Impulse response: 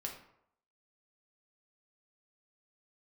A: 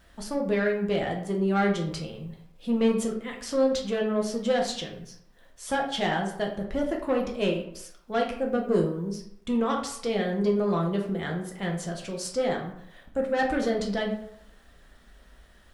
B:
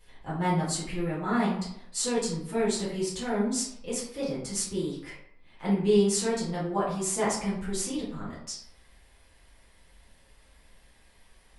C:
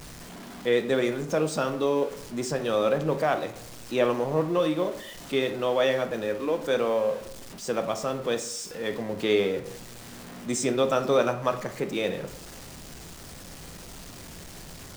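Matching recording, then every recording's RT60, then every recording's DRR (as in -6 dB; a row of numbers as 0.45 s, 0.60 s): A; 0.75 s, 0.75 s, 0.75 s; 0.0 dB, -9.0 dB, 6.5 dB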